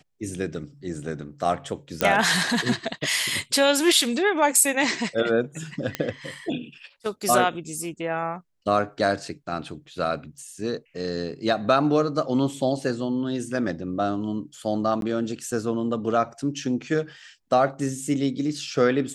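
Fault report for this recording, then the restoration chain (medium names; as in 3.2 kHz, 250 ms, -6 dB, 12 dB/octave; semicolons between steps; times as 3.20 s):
2.01 s: pop -5 dBFS
5.95 s: pop -10 dBFS
15.01–15.02 s: dropout 12 ms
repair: de-click; interpolate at 15.01 s, 12 ms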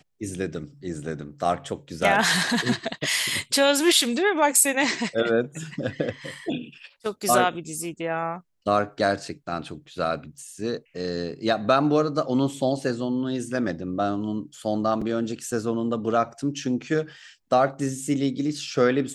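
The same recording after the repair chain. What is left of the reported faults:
nothing left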